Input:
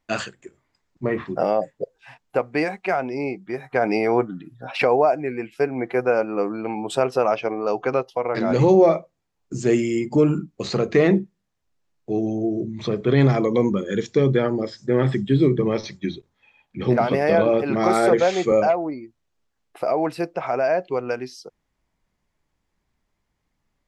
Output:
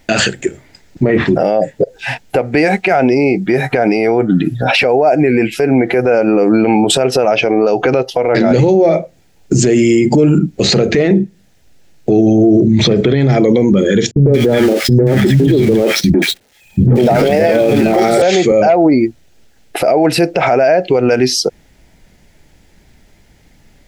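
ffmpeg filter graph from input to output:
ffmpeg -i in.wav -filter_complex "[0:a]asettb=1/sr,asplit=3[link_01][link_02][link_03];[link_01]atrim=end=14.114[link_04];[link_02]atrim=start=14.11:end=18.22,asetpts=PTS-STARTPTS,afade=type=in:duration=0.004:curve=qsin,afade=type=out:start_time=4.106:duration=0.004:curve=qsin,aeval=exprs='val(0)+0.5*0.0266*sgn(val(0))':channel_layout=same,agate=range=-37dB:threshold=-29dB:ratio=16:release=100:detection=peak,acrossover=split=230|1200[link_05][link_06][link_07];[link_06]adelay=100[link_08];[link_07]adelay=180[link_09];[link_05][link_08][link_09]amix=inputs=3:normalize=0,atrim=end_sample=181251[link_10];[link_03]atrim=start=18.216[link_11];[link_04][link_10]acrossfade=duration=0.004:curve1=hsin:curve2=qsin[link_12];[link_12][link_11]acrossfade=duration=0.004:curve1=qsin:curve2=hsin,equalizer=frequency=1100:width_type=o:width=0.4:gain=-15,acompressor=threshold=-27dB:ratio=6,alimiter=level_in=29dB:limit=-1dB:release=50:level=0:latency=1,volume=-2dB" out.wav

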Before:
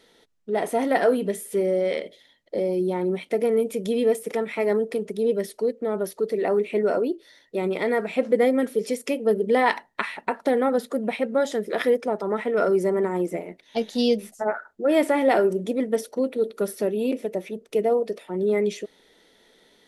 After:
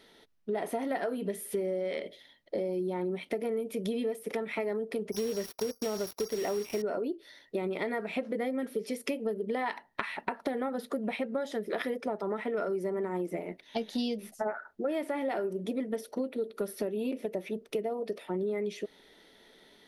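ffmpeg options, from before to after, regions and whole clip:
ffmpeg -i in.wav -filter_complex "[0:a]asettb=1/sr,asplit=3[link_01][link_02][link_03];[link_01]atrim=end=5.124[link_04];[link_02]atrim=start=5.12:end=6.82,asetpts=PTS-STARTPTS,afade=type=in:duration=0.004:curve=qsin,afade=type=out:start_time=1.696:duration=0.004:curve=qsin,aeval=exprs='val(0)+0.0178*sin(2*PI*5600*n/s)':channel_layout=same,acrusher=bits=4:mix=0:aa=0.5[link_05];[link_03]atrim=start=6.816[link_06];[link_04][link_05]acrossfade=duration=0.004:curve1=hsin:curve2=qsin[link_07];[link_07][link_06]acrossfade=duration=0.004:curve1=qsin:curve2=hsin,equalizer=frequency=7400:width_type=o:width=0.52:gain=-8,bandreject=frequency=490:width=12,acompressor=threshold=-29dB:ratio=10" out.wav

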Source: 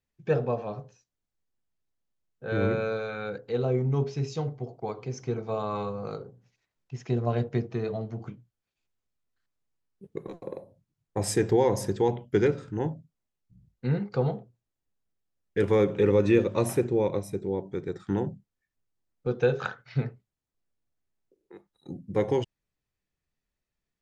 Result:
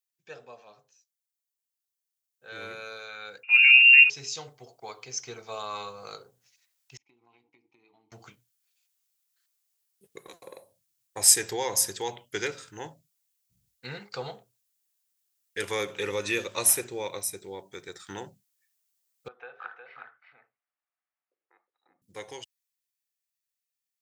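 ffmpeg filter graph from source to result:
ffmpeg -i in.wav -filter_complex "[0:a]asettb=1/sr,asplit=3[link_01][link_02][link_03];[link_01]atrim=end=3.434[link_04];[link_02]atrim=start=3.43:end=4.1,asetpts=PTS-STARTPTS,afade=type=in:duration=0.004:curve=qsin,afade=type=out:start_time=0.666:duration=0.004:curve=qsin,acontrast=87,lowpass=frequency=2500:width_type=q:width=0.5098,lowpass=frequency=2500:width_type=q:width=0.6013,lowpass=frequency=2500:width_type=q:width=0.9,lowpass=frequency=2500:width_type=q:width=2.563,afreqshift=-2900[link_05];[link_03]atrim=start=4.096[link_06];[link_04][link_05]acrossfade=duration=0.004:curve1=hsin:curve2=qsin[link_07];[link_07][link_06]acrossfade=duration=0.004:curve1=qsin:curve2=hsin,asettb=1/sr,asplit=3[link_08][link_09][link_10];[link_08]atrim=end=6.974[link_11];[link_09]atrim=start=6.97:end=8.12,asetpts=PTS-STARTPTS,afade=type=in:duration=0.004:curve=qsin,afade=type=out:start_time=1.146:duration=0.004:curve=qsin,agate=range=-33dB:threshold=-41dB:ratio=3:release=100:detection=peak,asplit=3[link_12][link_13][link_14];[link_12]bandpass=frequency=300:width_type=q:width=8,volume=0dB[link_15];[link_13]bandpass=frequency=870:width_type=q:width=8,volume=-6dB[link_16];[link_14]bandpass=frequency=2240:width_type=q:width=8,volume=-9dB[link_17];[link_15][link_16][link_17]amix=inputs=3:normalize=0,acompressor=threshold=-49dB:ratio=12:attack=3.2:release=140:knee=1:detection=peak[link_18];[link_10]atrim=start=8.116[link_19];[link_11][link_18]acrossfade=duration=0.004:curve1=hsin:curve2=qsin[link_20];[link_20][link_19]acrossfade=duration=0.004:curve1=qsin:curve2=hsin,asettb=1/sr,asplit=3[link_21][link_22][link_23];[link_21]atrim=end=19.284[link_24];[link_22]atrim=start=19.28:end=22.02,asetpts=PTS-STARTPTS,afade=type=in:duration=0.004:curve=qsin,afade=type=out:start_time=2.736:duration=0.004:curve=qsin,acompressor=threshold=-55dB:ratio=1.5:attack=3.2:release=140:knee=1:detection=peak,highpass=370,equalizer=frequency=400:width_type=q:width=4:gain=-8,equalizer=frequency=750:width_type=q:width=4:gain=6,equalizer=frequency=1200:width_type=q:width=4:gain=5,lowpass=frequency=2200:width=0.5412,lowpass=frequency=2200:width=1.3066,aecho=1:1:361:0.562,atrim=end_sample=120834[link_25];[link_23]atrim=start=22.016[link_26];[link_24][link_25]acrossfade=duration=0.004:curve1=hsin:curve2=qsin[link_27];[link_27][link_26]acrossfade=duration=0.004:curve1=qsin:curve2=hsin,aderivative,dynaudnorm=framelen=400:gausssize=17:maxgain=12.5dB,asubboost=boost=4:cutoff=92,volume=3dB" out.wav

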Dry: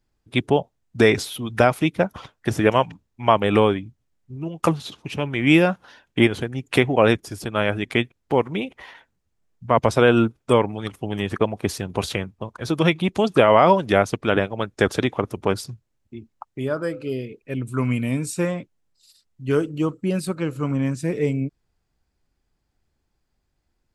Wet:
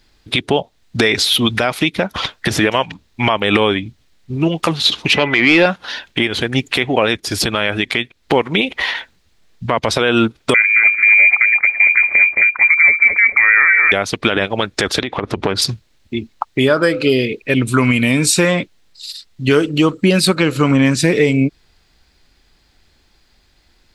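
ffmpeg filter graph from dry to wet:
ffmpeg -i in.wav -filter_complex "[0:a]asettb=1/sr,asplit=3[link_01][link_02][link_03];[link_01]atrim=end=5.134[link_04];[link_02]atrim=start=5.13:end=5.66,asetpts=PTS-STARTPTS,afade=type=in:duration=0.004:curve=qsin,afade=type=out:start_time=0.526:duration=0.004:curve=qsin,aeval=exprs='val(0)+0.00501*sin(2*PI*2000*n/s)':channel_layout=same,asplit=2[link_05][link_06];[link_06]highpass=frequency=720:poles=1,volume=17dB,asoftclip=type=tanh:threshold=-2dB[link_07];[link_05][link_07]amix=inputs=2:normalize=0,lowpass=frequency=1200:poles=1,volume=-6dB[link_08];[link_03]atrim=start=5.656[link_09];[link_04][link_08]acrossfade=duration=0.004:curve1=hsin:curve2=qsin[link_10];[link_10][link_09]acrossfade=duration=0.004:curve1=qsin:curve2=hsin,asettb=1/sr,asplit=3[link_11][link_12][link_13];[link_11]atrim=end=10.544[link_14];[link_12]atrim=start=10.54:end=13.92,asetpts=PTS-STARTPTS,afade=type=in:duration=0.004:curve=qsin,afade=type=out:start_time=3.376:duration=0.004:curve=qsin,equalizer=frequency=110:width=1.1:gain=12,lowpass=frequency=2100:width_type=q:width=0.5098,lowpass=frequency=2100:width_type=q:width=0.6013,lowpass=frequency=2100:width_type=q:width=0.9,lowpass=frequency=2100:width_type=q:width=2.563,afreqshift=-2500,asplit=2[link_15][link_16];[link_16]adelay=219,lowpass=frequency=1100:poles=1,volume=-5.5dB,asplit=2[link_17][link_18];[link_18]adelay=219,lowpass=frequency=1100:poles=1,volume=0.27,asplit=2[link_19][link_20];[link_20]adelay=219,lowpass=frequency=1100:poles=1,volume=0.27,asplit=2[link_21][link_22];[link_22]adelay=219,lowpass=frequency=1100:poles=1,volume=0.27[link_23];[link_15][link_17][link_19][link_21][link_23]amix=inputs=5:normalize=0,atrim=end_sample=149058[link_24];[link_13]atrim=start=13.916[link_25];[link_14][link_24]acrossfade=duration=0.004:curve1=hsin:curve2=qsin[link_26];[link_26][link_25]acrossfade=duration=0.004:curve1=qsin:curve2=hsin,asettb=1/sr,asplit=3[link_27][link_28][link_29];[link_27]atrim=end=15.014[link_30];[link_28]atrim=start=15.01:end=15.62,asetpts=PTS-STARTPTS,afade=type=in:duration=0.004:curve=qsin,afade=type=out:start_time=0.606:duration=0.004:curve=qsin,aemphasis=mode=reproduction:type=75fm,acompressor=threshold=-27dB:ratio=12:attack=3.2:release=140:knee=1:detection=peak[link_31];[link_29]atrim=start=15.616[link_32];[link_30][link_31]acrossfade=duration=0.004:curve1=hsin:curve2=qsin[link_33];[link_33][link_32]acrossfade=duration=0.004:curve1=qsin:curve2=hsin,equalizer=frequency=125:width_type=o:width=1:gain=-5,equalizer=frequency=2000:width_type=o:width=1:gain=5,equalizer=frequency=4000:width_type=o:width=1:gain=11,acompressor=threshold=-26dB:ratio=4,alimiter=level_in=17.5dB:limit=-1dB:release=50:level=0:latency=1,volume=-1dB" out.wav

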